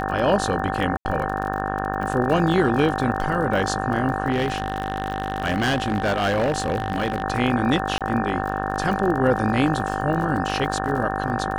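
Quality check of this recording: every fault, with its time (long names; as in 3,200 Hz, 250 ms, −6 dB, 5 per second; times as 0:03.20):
mains buzz 50 Hz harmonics 36 −27 dBFS
surface crackle 31 per second −28 dBFS
whistle 770 Hz −28 dBFS
0:00.97–0:01.05: drop-out 80 ms
0:04.32–0:07.24: clipping −17 dBFS
0:07.98–0:08.01: drop-out 27 ms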